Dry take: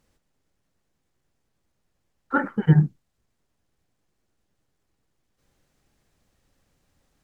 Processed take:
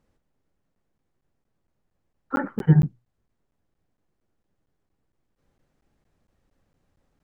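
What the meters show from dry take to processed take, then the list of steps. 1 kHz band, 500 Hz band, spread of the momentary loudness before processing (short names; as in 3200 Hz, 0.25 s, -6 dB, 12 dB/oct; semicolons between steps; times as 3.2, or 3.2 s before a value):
-3.5 dB, -1.0 dB, 8 LU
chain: high shelf 2300 Hz -11.5 dB; notches 60/120 Hz; crackling interface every 0.23 s, samples 512, zero, from 0.75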